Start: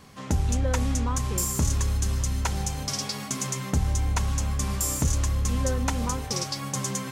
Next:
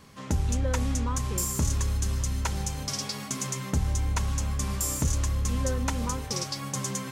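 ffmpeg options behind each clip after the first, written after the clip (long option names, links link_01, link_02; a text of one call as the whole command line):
ffmpeg -i in.wav -af "bandreject=frequency=740:width=12,volume=-2dB" out.wav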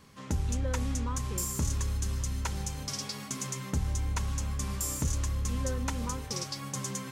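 ffmpeg -i in.wav -af "equalizer=frequency=680:width_type=o:width=0.41:gain=-3,volume=-4dB" out.wav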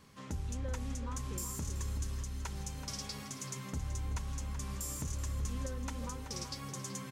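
ffmpeg -i in.wav -filter_complex "[0:a]alimiter=level_in=1.5dB:limit=-24dB:level=0:latency=1:release=465,volume=-1.5dB,asplit=2[link_01][link_02];[link_02]adelay=379,volume=-8dB,highshelf=frequency=4000:gain=-8.53[link_03];[link_01][link_03]amix=inputs=2:normalize=0,volume=-3.5dB" out.wav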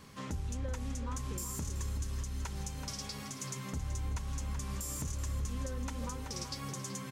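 ffmpeg -i in.wav -af "alimiter=level_in=10.5dB:limit=-24dB:level=0:latency=1:release=488,volume=-10.5dB,volume=6dB" out.wav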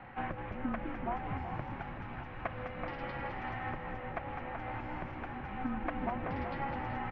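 ffmpeg -i in.wav -filter_complex "[0:a]asplit=7[link_01][link_02][link_03][link_04][link_05][link_06][link_07];[link_02]adelay=203,afreqshift=62,volume=-8dB[link_08];[link_03]adelay=406,afreqshift=124,volume=-14.2dB[link_09];[link_04]adelay=609,afreqshift=186,volume=-20.4dB[link_10];[link_05]adelay=812,afreqshift=248,volume=-26.6dB[link_11];[link_06]adelay=1015,afreqshift=310,volume=-32.8dB[link_12];[link_07]adelay=1218,afreqshift=372,volume=-39dB[link_13];[link_01][link_08][link_09][link_10][link_11][link_12][link_13]amix=inputs=7:normalize=0,highpass=frequency=330:width_type=q:width=0.5412,highpass=frequency=330:width_type=q:width=1.307,lowpass=frequency=2600:width_type=q:width=0.5176,lowpass=frequency=2600:width_type=q:width=0.7071,lowpass=frequency=2600:width_type=q:width=1.932,afreqshift=-280,volume=9.5dB" out.wav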